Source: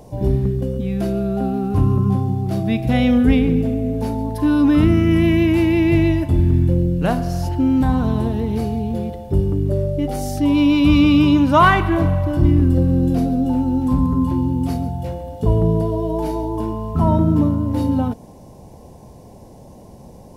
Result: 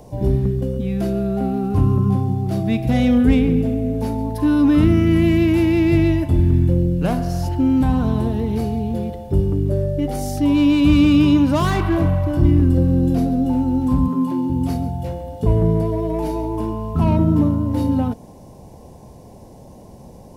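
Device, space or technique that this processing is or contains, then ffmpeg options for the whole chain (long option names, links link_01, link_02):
one-band saturation: -filter_complex "[0:a]acrossover=split=530|4800[link_01][link_02][link_03];[link_02]asoftclip=type=tanh:threshold=-24dB[link_04];[link_01][link_04][link_03]amix=inputs=3:normalize=0,asettb=1/sr,asplit=3[link_05][link_06][link_07];[link_05]atrim=end=14.084[link_08];[link_06]atrim=start=14.08:end=14.5,asetpts=PTS-STARTPTS,afade=type=in:duration=0.004:curve=qsin,afade=type=out:start_time=0.416:duration=0.004:curve=qsin,highpass=frequency=180:width=0.5412,highpass=frequency=180:width=1.3066[link_09];[link_07]atrim=start=14.496[link_10];[link_08][link_09]acrossfade=duration=0.004:curve1=hsin:curve2=qsin[link_11];[link_11][link_10]acrossfade=duration=0.004:curve1=qsin:curve2=hsin"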